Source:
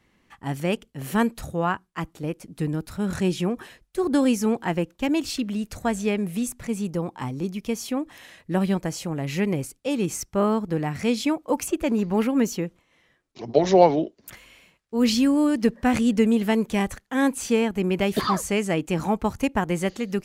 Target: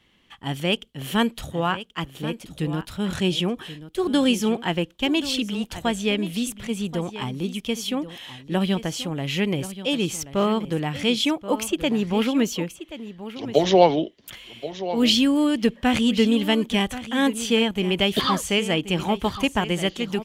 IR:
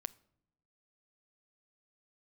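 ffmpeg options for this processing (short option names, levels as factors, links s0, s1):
-af "equalizer=f=3200:t=o:w=0.51:g=14,aecho=1:1:1080:0.211"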